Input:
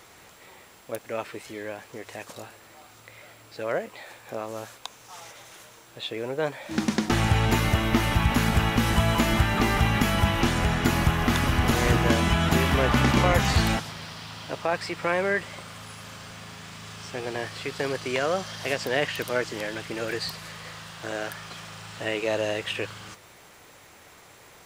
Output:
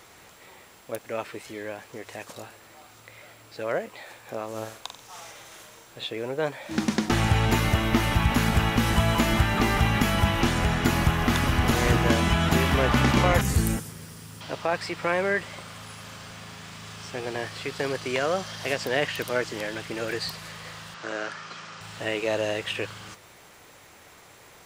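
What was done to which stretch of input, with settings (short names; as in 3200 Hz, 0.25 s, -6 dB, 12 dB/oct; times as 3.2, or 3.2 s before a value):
4.5–6.05 flutter echo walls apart 7.8 m, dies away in 0.4 s
13.41–14.41 EQ curve 470 Hz 0 dB, 670 Hz -12 dB, 1600 Hz -8 dB, 4100 Hz -12 dB, 9200 Hz +8 dB
20.94–21.81 speaker cabinet 190–6800 Hz, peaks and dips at 720 Hz -4 dB, 1300 Hz +5 dB, 3500 Hz -3 dB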